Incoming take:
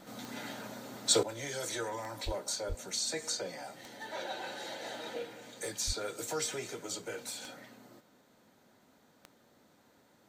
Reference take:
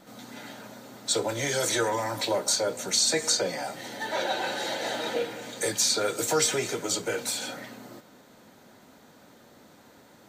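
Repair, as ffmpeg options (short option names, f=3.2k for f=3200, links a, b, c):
-filter_complex "[0:a]adeclick=t=4,asplit=3[a][b][c];[a]afade=t=out:st=2.25:d=0.02[d];[b]highpass=f=140:w=0.5412,highpass=f=140:w=1.3066,afade=t=in:st=2.25:d=0.02,afade=t=out:st=2.37:d=0.02[e];[c]afade=t=in:st=2.37:d=0.02[f];[d][e][f]amix=inputs=3:normalize=0,asplit=3[g][h][i];[g]afade=t=out:st=2.68:d=0.02[j];[h]highpass=f=140:w=0.5412,highpass=f=140:w=1.3066,afade=t=in:st=2.68:d=0.02,afade=t=out:st=2.8:d=0.02[k];[i]afade=t=in:st=2.8:d=0.02[l];[j][k][l]amix=inputs=3:normalize=0,asplit=3[m][n][o];[m]afade=t=out:st=5.86:d=0.02[p];[n]highpass=f=140:w=0.5412,highpass=f=140:w=1.3066,afade=t=in:st=5.86:d=0.02,afade=t=out:st=5.98:d=0.02[q];[o]afade=t=in:st=5.98:d=0.02[r];[p][q][r]amix=inputs=3:normalize=0,asetnsamples=n=441:p=0,asendcmd='1.23 volume volume 11dB',volume=0dB"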